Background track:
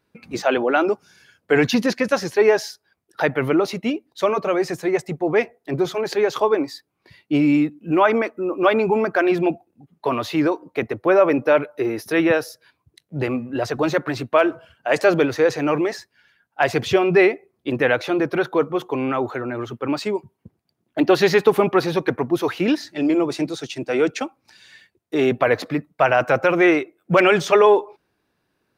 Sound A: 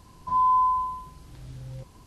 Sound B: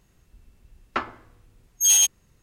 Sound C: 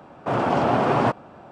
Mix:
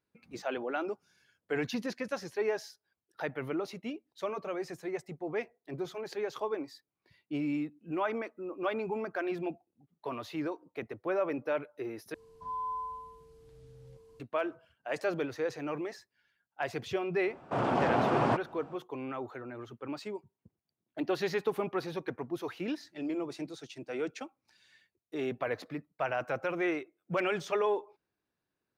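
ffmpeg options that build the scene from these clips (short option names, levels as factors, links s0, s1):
-filter_complex "[0:a]volume=0.158[s0];[1:a]aeval=exprs='val(0)+0.01*sin(2*PI*450*n/s)':c=same[s1];[s0]asplit=2[s2][s3];[s2]atrim=end=12.144[s4];[s1]atrim=end=2.06,asetpts=PTS-STARTPTS,volume=0.168[s5];[s3]atrim=start=14.196[s6];[3:a]atrim=end=1.51,asetpts=PTS-STARTPTS,volume=0.422,afade=t=in:d=0.004:c=hsin,afade=t=out:st=1.506:d=0.004:c=hsin,adelay=17250[s7];[s4][s5]acrossfade=d=0.004:c1=hsin:c2=hsin[s8];[s8][s6]acrossfade=d=0.004:c1=hsin:c2=hsin[s9];[s9][s7]amix=inputs=2:normalize=0"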